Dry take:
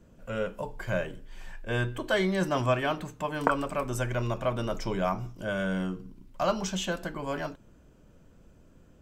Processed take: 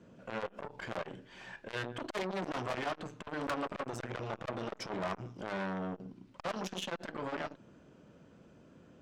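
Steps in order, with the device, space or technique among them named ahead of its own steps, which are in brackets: valve radio (band-pass 140–5100 Hz; valve stage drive 32 dB, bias 0.45; transformer saturation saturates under 730 Hz); trim +4 dB

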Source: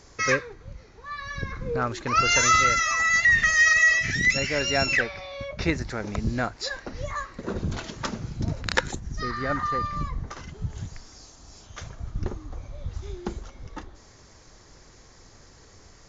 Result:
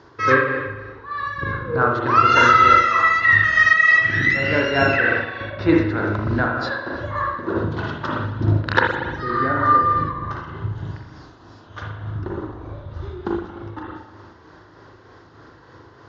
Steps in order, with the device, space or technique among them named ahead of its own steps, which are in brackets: combo amplifier with spring reverb and tremolo (spring tank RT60 1.2 s, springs 38/58 ms, chirp 45 ms, DRR -2 dB; tremolo 3.3 Hz, depth 36%; cabinet simulation 99–4000 Hz, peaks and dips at 100 Hz +8 dB, 190 Hz -4 dB, 330 Hz +9 dB, 1 kHz +7 dB, 1.5 kHz +7 dB, 2.3 kHz -9 dB); trim +3 dB

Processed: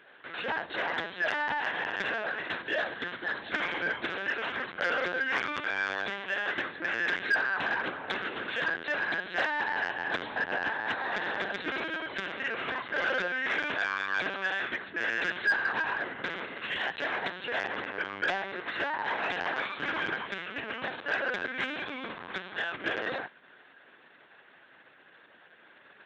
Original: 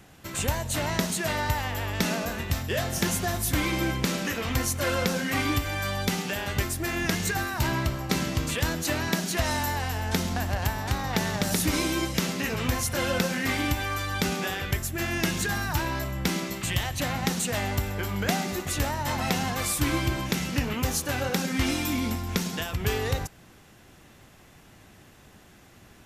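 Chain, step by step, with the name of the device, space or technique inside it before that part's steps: 2.94–3.42 s: fifteen-band graphic EQ 100 Hz -3 dB, 630 Hz -11 dB, 2.5 kHz -4 dB; talking toy (LPC vocoder at 8 kHz pitch kept; high-pass 400 Hz 12 dB/octave; peaking EQ 1.6 kHz +11 dB 0.35 oct; saturation -16.5 dBFS, distortion -20 dB); trim -2 dB

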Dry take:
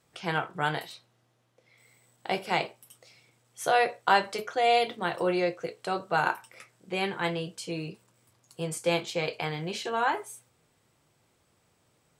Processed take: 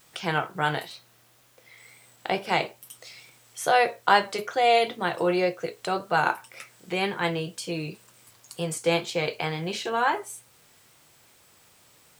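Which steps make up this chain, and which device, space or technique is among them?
0.88–2.49 s: treble shelf 5.1 kHz -6 dB; noise-reduction cassette on a plain deck (tape noise reduction on one side only encoder only; wow and flutter; white noise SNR 34 dB); trim +3 dB

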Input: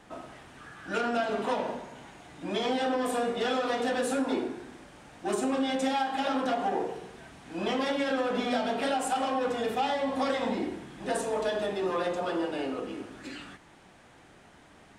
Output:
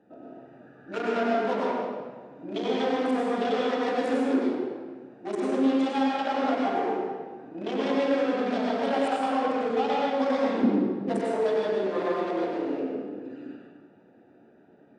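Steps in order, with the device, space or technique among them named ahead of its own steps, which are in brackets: local Wiener filter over 41 samples; supermarket ceiling speaker (band-pass 220–6200 Hz; reverberation RT60 1.4 s, pre-delay 90 ms, DRR -4 dB); 10.63–11.21 s: peaking EQ 200 Hz +10 dB 1.3 oct

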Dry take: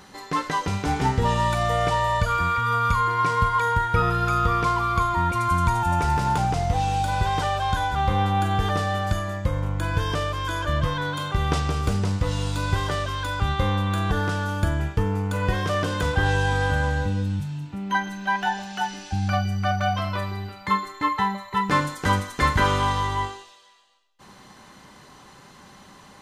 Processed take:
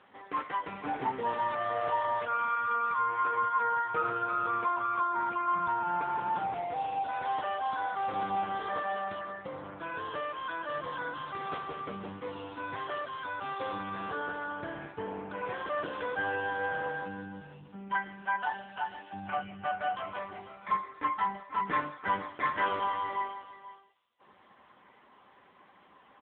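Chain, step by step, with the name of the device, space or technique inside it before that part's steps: satellite phone (band-pass 300–3300 Hz; delay 482 ms -14.5 dB; trim -6 dB; AMR-NB 6.7 kbps 8 kHz)

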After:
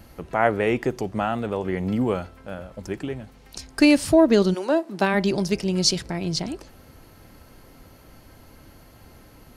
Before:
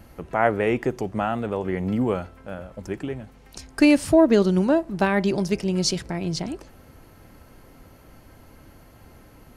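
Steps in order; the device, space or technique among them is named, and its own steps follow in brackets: presence and air boost (peaking EQ 4.3 kHz +4.5 dB 1 oct; treble shelf 9.8 kHz +4 dB); 4.53–5.13 s: high-pass 450 Hz -> 150 Hz 24 dB/octave

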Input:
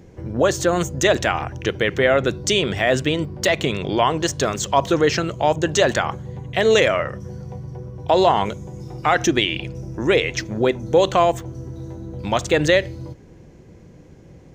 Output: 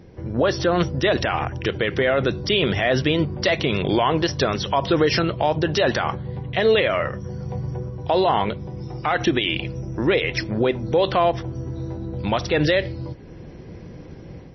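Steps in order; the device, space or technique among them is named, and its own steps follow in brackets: 7.20–8.43 s: steep low-pass 11 kHz 36 dB/octave; low-bitrate web radio (level rider gain up to 7 dB; peak limiter -9 dBFS, peak gain reduction 7.5 dB; MP3 24 kbps 22.05 kHz)

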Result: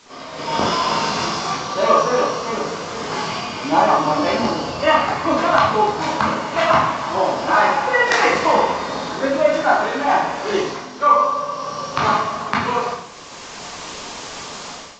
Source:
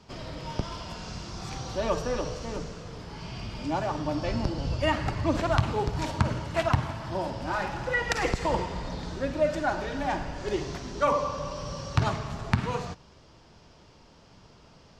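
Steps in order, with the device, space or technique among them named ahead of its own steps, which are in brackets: filmed off a television (band-pass 300–7600 Hz; peaking EQ 1.1 kHz +9 dB 0.34 oct; reverberation RT60 0.55 s, pre-delay 14 ms, DRR -4.5 dB; white noise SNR 21 dB; level rider gain up to 16.5 dB; trim -1 dB; AAC 32 kbps 16 kHz)

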